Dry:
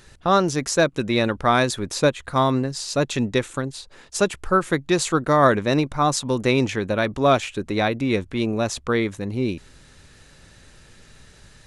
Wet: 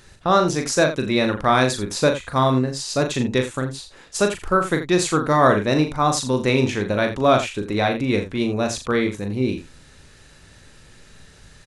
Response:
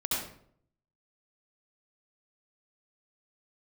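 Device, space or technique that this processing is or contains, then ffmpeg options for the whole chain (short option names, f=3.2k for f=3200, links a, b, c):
slapback doubling: -filter_complex "[0:a]asplit=3[a][b][c];[b]adelay=39,volume=-6dB[d];[c]adelay=83,volume=-12dB[e];[a][d][e]amix=inputs=3:normalize=0"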